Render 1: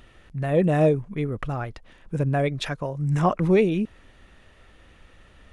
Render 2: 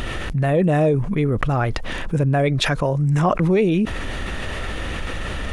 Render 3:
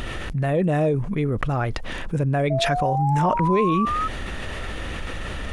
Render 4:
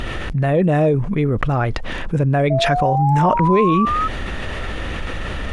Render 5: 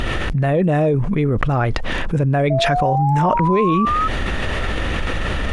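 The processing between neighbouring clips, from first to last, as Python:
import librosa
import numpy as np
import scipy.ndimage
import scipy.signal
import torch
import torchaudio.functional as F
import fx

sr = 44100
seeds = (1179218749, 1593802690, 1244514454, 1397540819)

y1 = fx.env_flatten(x, sr, amount_pct=70)
y2 = fx.spec_paint(y1, sr, seeds[0], shape='rise', start_s=2.5, length_s=1.58, low_hz=640.0, high_hz=1300.0, level_db=-21.0)
y2 = y2 * librosa.db_to_amplitude(-3.5)
y3 = fx.high_shelf(y2, sr, hz=7700.0, db=-10.5)
y3 = y3 * librosa.db_to_amplitude(5.0)
y4 = fx.env_flatten(y3, sr, amount_pct=50)
y4 = y4 * librosa.db_to_amplitude(-2.0)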